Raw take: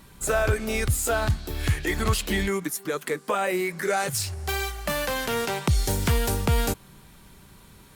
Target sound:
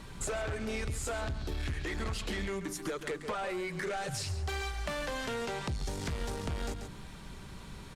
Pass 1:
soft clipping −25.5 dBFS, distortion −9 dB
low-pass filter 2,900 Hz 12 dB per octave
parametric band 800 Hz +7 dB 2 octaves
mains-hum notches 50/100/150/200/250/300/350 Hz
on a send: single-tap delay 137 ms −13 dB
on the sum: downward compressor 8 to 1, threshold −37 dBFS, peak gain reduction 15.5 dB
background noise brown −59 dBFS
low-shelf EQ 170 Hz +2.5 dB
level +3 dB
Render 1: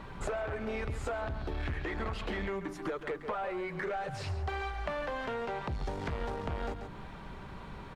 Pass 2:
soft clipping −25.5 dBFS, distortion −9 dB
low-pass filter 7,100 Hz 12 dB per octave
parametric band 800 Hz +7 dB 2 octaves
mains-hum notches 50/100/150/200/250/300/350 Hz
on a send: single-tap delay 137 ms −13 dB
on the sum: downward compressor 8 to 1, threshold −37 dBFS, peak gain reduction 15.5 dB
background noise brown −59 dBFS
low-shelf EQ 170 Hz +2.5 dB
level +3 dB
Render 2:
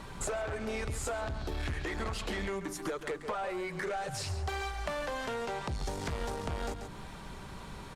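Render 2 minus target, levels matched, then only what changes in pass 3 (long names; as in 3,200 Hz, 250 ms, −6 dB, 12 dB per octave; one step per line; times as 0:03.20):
1,000 Hz band +3.0 dB
remove: parametric band 800 Hz +7 dB 2 octaves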